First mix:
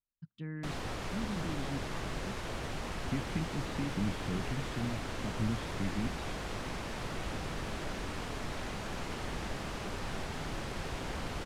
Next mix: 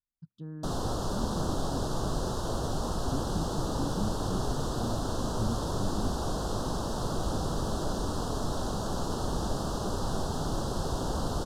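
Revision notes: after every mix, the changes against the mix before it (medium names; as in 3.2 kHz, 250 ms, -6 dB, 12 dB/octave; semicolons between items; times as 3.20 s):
background +8.0 dB; master: add Butterworth band-stop 2.2 kHz, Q 0.83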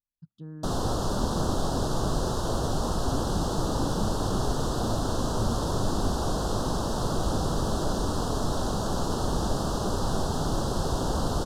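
background +4.0 dB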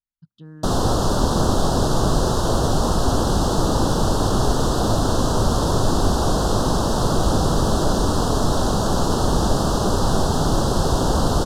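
speech: add peaking EQ 2.7 kHz +11.5 dB 2 oct; background +8.5 dB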